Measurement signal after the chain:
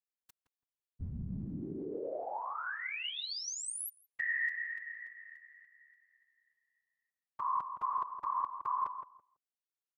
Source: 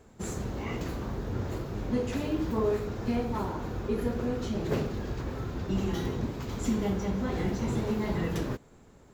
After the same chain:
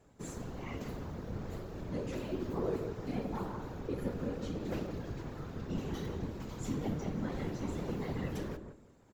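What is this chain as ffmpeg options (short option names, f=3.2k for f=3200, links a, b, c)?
-filter_complex "[0:a]afftfilt=real='hypot(re,im)*cos(2*PI*random(0))':imag='hypot(re,im)*sin(2*PI*random(1))':win_size=512:overlap=0.75,asplit=2[a][b];[b]adelay=166,lowpass=f=1k:p=1,volume=-6.5dB,asplit=2[c][d];[d]adelay=166,lowpass=f=1k:p=1,volume=0.22,asplit=2[e][f];[f]adelay=166,lowpass=f=1k:p=1,volume=0.22[g];[a][c][e][g]amix=inputs=4:normalize=0,volume=-2dB"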